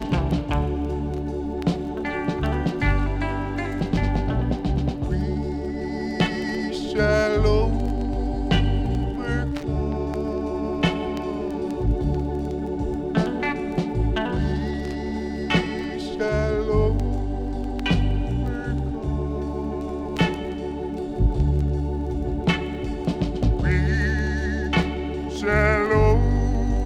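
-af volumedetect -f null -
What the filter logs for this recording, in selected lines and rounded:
mean_volume: -22.9 dB
max_volume: -5.1 dB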